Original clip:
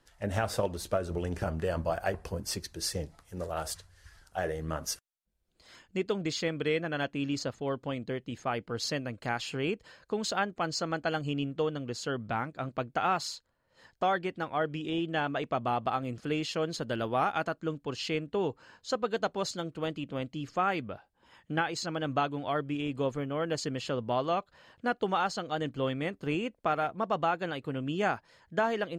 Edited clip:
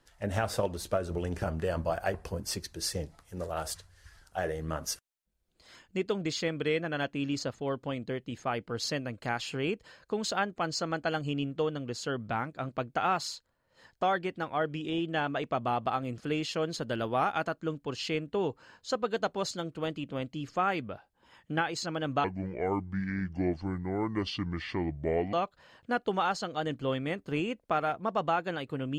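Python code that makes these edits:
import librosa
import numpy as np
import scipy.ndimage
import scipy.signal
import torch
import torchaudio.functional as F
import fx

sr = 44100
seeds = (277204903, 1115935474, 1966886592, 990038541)

y = fx.edit(x, sr, fx.speed_span(start_s=22.24, length_s=2.04, speed=0.66), tone=tone)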